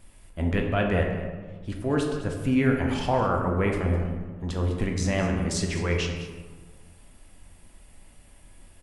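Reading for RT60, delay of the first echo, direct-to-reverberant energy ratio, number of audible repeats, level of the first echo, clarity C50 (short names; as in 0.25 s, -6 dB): 1.5 s, 0.207 s, 1.0 dB, 1, -13.0 dB, 4.0 dB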